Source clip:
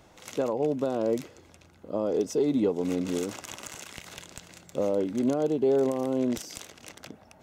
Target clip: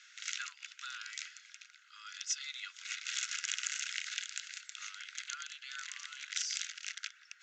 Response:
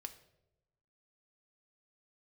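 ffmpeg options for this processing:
-af "asuperpass=centerf=3300:order=20:qfactor=0.55,volume=2"

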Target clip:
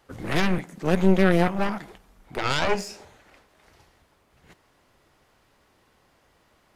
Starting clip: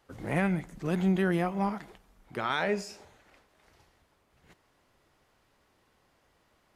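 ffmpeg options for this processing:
-filter_complex "[0:a]asettb=1/sr,asplit=3[s0][s1][s2];[s0]atrim=end=0.584[s3];[s1]atrim=start=0.58:end=1.48,asetpts=PTS-STARTPTS,afade=t=in:d=0.004:c=qsin,afade=t=out:st=0.896:d=0.004:c=qsin,highpass=f=150:w=0.5412,highpass=f=150:w=1.3066[s4];[s2]atrim=start=1.476[s5];[s3][s4]acrossfade=d=0.004:c1=hsin:c2=qsin[s6];[s6][s5]acrossfade=d=0.004:c1=qsin:c2=hsin,aeval=exprs='0.178*(cos(1*acos(clip(val(0)/0.178,-1,1)))-cos(1*PI/2))+0.0891*(cos(4*acos(clip(val(0)/0.178,-1,1)))-cos(4*PI/2))+0.0112*(cos(5*acos(clip(val(0)/0.178,-1,1)))-cos(5*PI/2))':c=same,volume=1.5"

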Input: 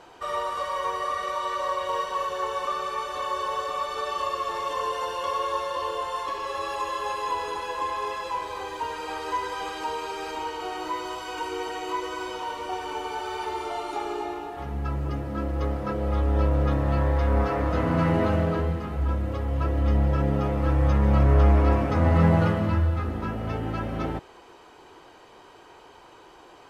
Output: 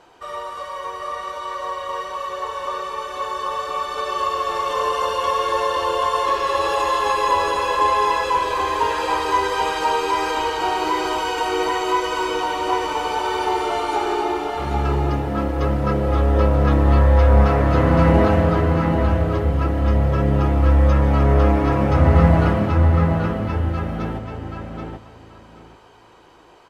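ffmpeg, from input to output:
-filter_complex "[0:a]dynaudnorm=f=710:g=13:m=3.76,asplit=2[s0][s1];[s1]adelay=782,lowpass=f=5000:p=1,volume=0.668,asplit=2[s2][s3];[s3]adelay=782,lowpass=f=5000:p=1,volume=0.2,asplit=2[s4][s5];[s5]adelay=782,lowpass=f=5000:p=1,volume=0.2[s6];[s2][s4][s6]amix=inputs=3:normalize=0[s7];[s0][s7]amix=inputs=2:normalize=0,volume=0.841"

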